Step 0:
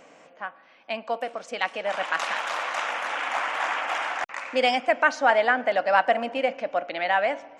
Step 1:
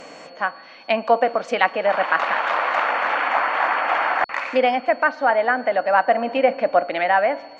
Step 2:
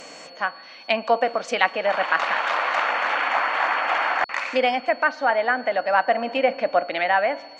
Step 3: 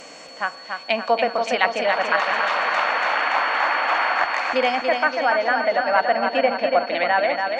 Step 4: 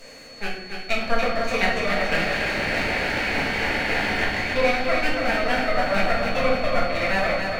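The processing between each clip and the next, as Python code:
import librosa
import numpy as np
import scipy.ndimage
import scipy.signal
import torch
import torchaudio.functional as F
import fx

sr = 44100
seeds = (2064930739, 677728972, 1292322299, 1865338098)

y1 = fx.rider(x, sr, range_db=10, speed_s=0.5)
y1 = fx.env_lowpass_down(y1, sr, base_hz=1900.0, full_db=-22.5)
y1 = y1 + 10.0 ** (-56.0 / 20.0) * np.sin(2.0 * np.pi * 4400.0 * np.arange(len(y1)) / sr)
y1 = F.gain(torch.from_numpy(y1), 6.5).numpy()
y2 = fx.high_shelf(y1, sr, hz=3200.0, db=11.5)
y2 = F.gain(torch.from_numpy(y2), -3.5).numpy()
y3 = fx.echo_feedback(y2, sr, ms=285, feedback_pct=57, wet_db=-5)
y4 = fx.lower_of_two(y3, sr, delay_ms=0.46)
y4 = fx.room_shoebox(y4, sr, seeds[0], volume_m3=160.0, walls='mixed', distance_m=1.6)
y4 = F.gain(torch.from_numpy(y4), -7.0).numpy()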